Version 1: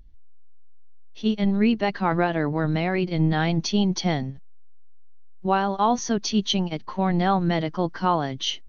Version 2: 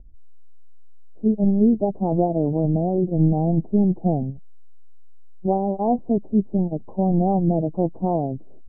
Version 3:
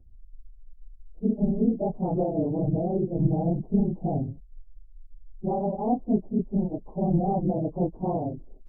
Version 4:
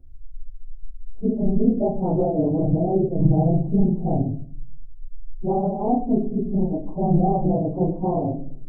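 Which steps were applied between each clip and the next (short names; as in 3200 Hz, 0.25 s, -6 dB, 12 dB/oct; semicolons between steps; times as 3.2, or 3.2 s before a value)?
steep low-pass 740 Hz 48 dB/oct; gain +3.5 dB
phase scrambler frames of 50 ms; gain -5 dB
shoebox room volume 49 m³, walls mixed, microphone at 0.46 m; gain +2.5 dB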